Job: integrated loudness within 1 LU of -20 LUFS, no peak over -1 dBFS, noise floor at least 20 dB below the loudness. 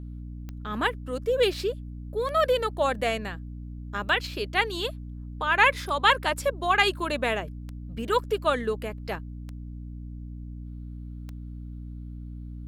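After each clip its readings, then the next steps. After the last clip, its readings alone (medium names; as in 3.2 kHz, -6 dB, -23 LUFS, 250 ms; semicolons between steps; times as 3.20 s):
clicks found 7; hum 60 Hz; highest harmonic 300 Hz; hum level -35 dBFS; loudness -26.0 LUFS; peak level -5.5 dBFS; loudness target -20.0 LUFS
-> de-click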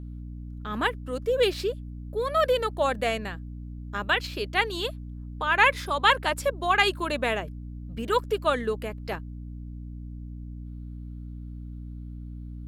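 clicks found 0; hum 60 Hz; highest harmonic 300 Hz; hum level -35 dBFS
-> hum notches 60/120/180/240/300 Hz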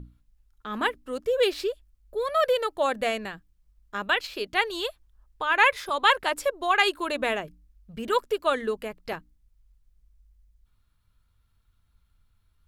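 hum not found; loudness -26.0 LUFS; peak level -6.0 dBFS; loudness target -20.0 LUFS
-> trim +6 dB; peak limiter -1 dBFS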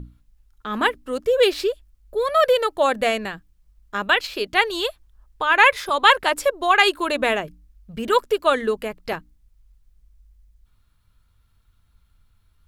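loudness -20.0 LUFS; peak level -1.0 dBFS; noise floor -62 dBFS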